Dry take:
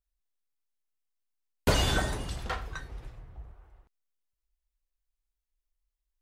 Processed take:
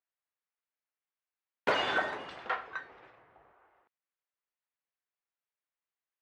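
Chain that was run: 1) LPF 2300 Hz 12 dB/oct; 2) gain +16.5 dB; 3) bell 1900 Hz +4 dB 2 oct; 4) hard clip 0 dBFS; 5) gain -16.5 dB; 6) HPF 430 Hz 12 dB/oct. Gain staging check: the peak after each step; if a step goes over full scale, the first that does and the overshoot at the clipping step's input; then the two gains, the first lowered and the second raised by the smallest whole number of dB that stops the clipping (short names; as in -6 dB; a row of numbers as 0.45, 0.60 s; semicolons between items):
-13.5, +3.0, +4.0, 0.0, -16.5, -14.5 dBFS; step 2, 4.0 dB; step 2 +12.5 dB, step 5 -12.5 dB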